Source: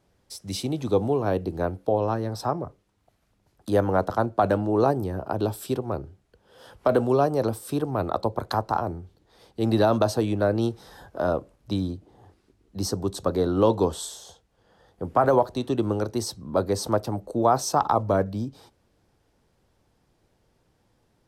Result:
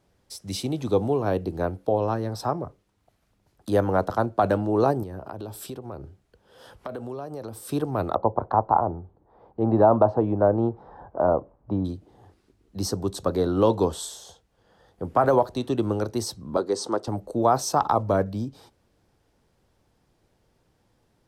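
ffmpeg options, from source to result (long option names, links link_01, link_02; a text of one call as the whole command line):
ffmpeg -i in.wav -filter_complex "[0:a]asettb=1/sr,asplit=3[link_01][link_02][link_03];[link_01]atrim=end=5.034[link_04];[link_02]atrim=start=5.03:end=7.62,asetpts=PTS-STARTPTS,afade=type=in:duration=0.004:curve=qsin,afade=type=out:start_time=2.586:duration=0.004:curve=qsin,acompressor=threshold=-33dB:ratio=4:attack=3.2:release=140:knee=1:detection=peak[link_05];[link_03]atrim=start=7.616[link_06];[link_04][link_05]acrossfade=duration=0.004:curve1=hsin:curve2=qsin[link_07];[link_07][link_06]acrossfade=duration=0.004:curve1=qsin:curve2=hsin,asettb=1/sr,asplit=3[link_08][link_09][link_10];[link_08]atrim=end=8.154[link_11];[link_09]atrim=start=8.15:end=11.85,asetpts=PTS-STARTPTS,afade=type=in:duration=0.004:curve=qsin,afade=type=out:start_time=3.696:duration=0.004:curve=qsin,lowpass=frequency=910:width_type=q:width=2[link_12];[link_10]atrim=start=11.846[link_13];[link_11][link_12]acrossfade=duration=0.004:curve1=hsin:curve2=qsin[link_14];[link_14][link_13]acrossfade=duration=0.004:curve1=qsin:curve2=hsin,asettb=1/sr,asplit=3[link_15][link_16][link_17];[link_15]atrim=end=16.574[link_18];[link_16]atrim=start=16.57:end=17.08,asetpts=PTS-STARTPTS,afade=type=in:duration=0.004:curve=qsin,afade=type=out:start_time=0.506:duration=0.004:curve=qsin,highpass=290,equalizer=frequency=370:width_type=q:width=4:gain=5,equalizer=frequency=630:width_type=q:width=4:gain=-7,equalizer=frequency=1700:width_type=q:width=4:gain=-3,equalizer=frequency=2400:width_type=q:width=4:gain=-8,lowpass=frequency=8800:width=0.5412,lowpass=frequency=8800:width=1.3066[link_19];[link_17]atrim=start=17.076[link_20];[link_18][link_19]acrossfade=duration=0.004:curve1=hsin:curve2=qsin[link_21];[link_21][link_20]acrossfade=duration=0.004:curve1=qsin:curve2=hsin" out.wav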